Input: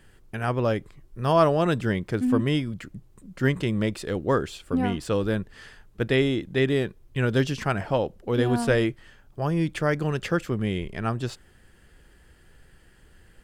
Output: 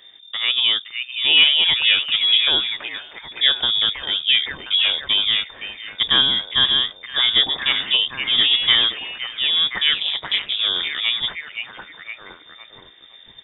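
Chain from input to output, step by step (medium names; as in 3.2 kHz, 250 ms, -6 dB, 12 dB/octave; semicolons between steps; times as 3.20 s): repeats whose band climbs or falls 515 ms, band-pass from 980 Hz, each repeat 0.7 oct, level -2 dB; frequency inversion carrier 3.6 kHz; 9.93–10.59 s: ring modulator 100 Hz; trim +5 dB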